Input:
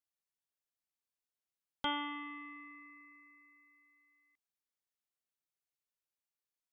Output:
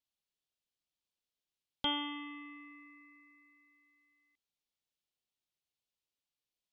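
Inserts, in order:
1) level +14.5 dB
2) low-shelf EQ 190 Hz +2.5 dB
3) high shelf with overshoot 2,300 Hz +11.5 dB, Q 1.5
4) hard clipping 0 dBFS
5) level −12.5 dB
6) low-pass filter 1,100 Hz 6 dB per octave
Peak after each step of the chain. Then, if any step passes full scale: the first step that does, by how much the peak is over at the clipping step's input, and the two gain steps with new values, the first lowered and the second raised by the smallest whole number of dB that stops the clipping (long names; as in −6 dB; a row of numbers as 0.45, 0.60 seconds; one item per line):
−8.5, −8.0, −1.5, −1.5, −14.0, −20.5 dBFS
no step passes full scale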